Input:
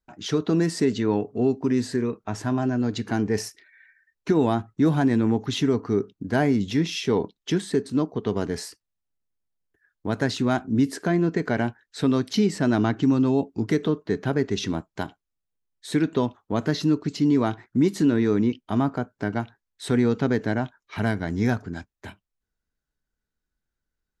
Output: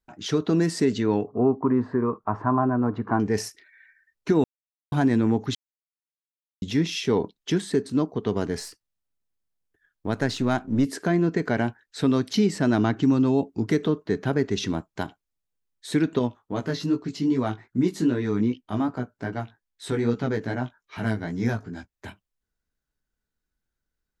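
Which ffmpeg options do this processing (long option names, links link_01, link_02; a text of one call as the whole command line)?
ffmpeg -i in.wav -filter_complex "[0:a]asettb=1/sr,asplit=3[link_01][link_02][link_03];[link_01]atrim=end=1.274[link_04];[link_02]atrim=start=1.27:end=3.2,asetpts=PTS-STARTPTS,afade=type=in:duration=0.004:curve=qsin,afade=type=out:start_time=1.926:duration=0.004:curve=qsin,lowpass=frequency=1100:width_type=q:width=4.6[link_05];[link_03]atrim=start=3.196[link_06];[link_04][link_05]acrossfade=duration=0.004:curve1=hsin:curve2=qsin[link_07];[link_07][link_06]acrossfade=duration=0.004:curve1=qsin:curve2=hsin,asettb=1/sr,asplit=3[link_08][link_09][link_10];[link_08]atrim=end=8.604[link_11];[link_09]atrim=start=8.6:end=10.85,asetpts=PTS-STARTPTS,afade=type=in:duration=0.004:curve=qsin,afade=type=out:start_time=2.246:duration=0.004:curve=qsin,aeval=exprs='if(lt(val(0),0),0.708*val(0),val(0))':channel_layout=same[link_12];[link_10]atrim=start=10.846[link_13];[link_11][link_12]acrossfade=duration=0.004:curve1=hsin:curve2=qsin[link_14];[link_14][link_13]acrossfade=duration=0.004:curve1=qsin:curve2=hsin,asettb=1/sr,asplit=3[link_15][link_16][link_17];[link_15]atrim=end=16.194[link_18];[link_16]atrim=start=16.19:end=21.93,asetpts=PTS-STARTPTS,afade=type=in:duration=0.004:curve=qsin,afade=type=out:start_time=5.736:duration=0.004:curve=qsin,flanger=delay=15.5:depth=3.4:speed=2.5[link_19];[link_17]atrim=start=21.926[link_20];[link_18][link_19]acrossfade=duration=0.004:curve1=hsin:curve2=qsin[link_21];[link_21][link_20]acrossfade=duration=0.004:curve1=qsin:curve2=hsin,asplit=5[link_22][link_23][link_24][link_25][link_26];[link_22]atrim=end=4.44,asetpts=PTS-STARTPTS,afade=type=out:start_time=4.436:duration=0.004:curve=hsin[link_27];[link_23]atrim=start=4.44:end=4.92,asetpts=PTS-STARTPTS,volume=0[link_28];[link_24]atrim=start=4.92:end=5.55,asetpts=PTS-STARTPTS,afade=type=in:duration=0.004:curve=hsin,afade=type=out:start_time=0.626:duration=0.004:curve=hsin[link_29];[link_25]atrim=start=5.55:end=6.62,asetpts=PTS-STARTPTS,volume=0[link_30];[link_26]atrim=start=6.62,asetpts=PTS-STARTPTS,afade=type=in:duration=0.004:curve=hsin[link_31];[link_27][link_28][link_29][link_30][link_31]concat=n=5:v=0:a=1" out.wav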